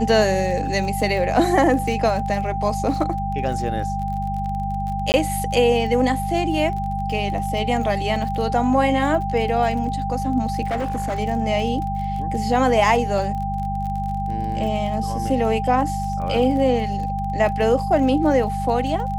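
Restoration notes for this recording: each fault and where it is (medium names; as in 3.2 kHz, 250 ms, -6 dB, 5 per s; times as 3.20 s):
crackle 29 per s -29 dBFS
hum 50 Hz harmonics 4 -27 dBFS
whine 790 Hz -25 dBFS
5.12–5.14 s: dropout 19 ms
10.68–11.20 s: clipped -19.5 dBFS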